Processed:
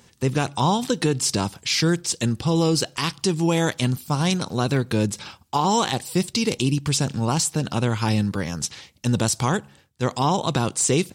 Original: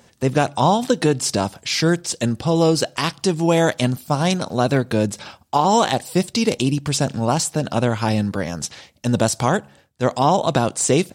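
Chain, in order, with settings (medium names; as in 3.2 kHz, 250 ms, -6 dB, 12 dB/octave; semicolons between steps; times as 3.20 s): fifteen-band graphic EQ 250 Hz -3 dB, 630 Hz -10 dB, 1.6 kHz -3 dB; in parallel at +1 dB: peak limiter -12.5 dBFS, peak gain reduction 7 dB; on the sum: trim -6 dB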